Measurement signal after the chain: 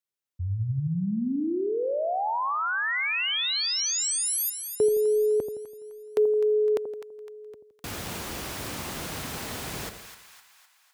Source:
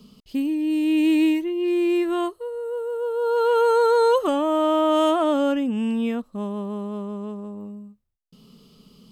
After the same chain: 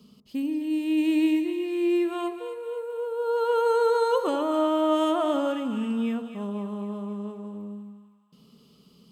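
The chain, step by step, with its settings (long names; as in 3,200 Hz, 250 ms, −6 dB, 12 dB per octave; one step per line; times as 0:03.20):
high-pass filter 66 Hz
on a send: echo with a time of its own for lows and highs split 960 Hz, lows 83 ms, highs 255 ms, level −9 dB
on the sum: level −5 dB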